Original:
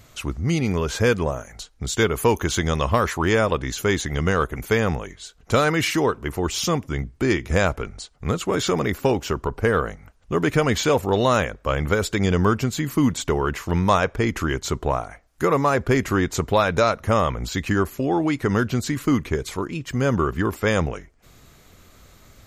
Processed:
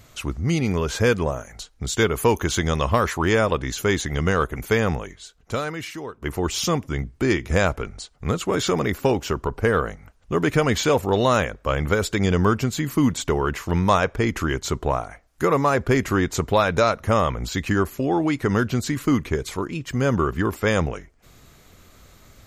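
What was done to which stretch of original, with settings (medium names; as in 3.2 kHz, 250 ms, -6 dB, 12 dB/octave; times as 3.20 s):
5.01–6.22 s: fade out quadratic, to -14 dB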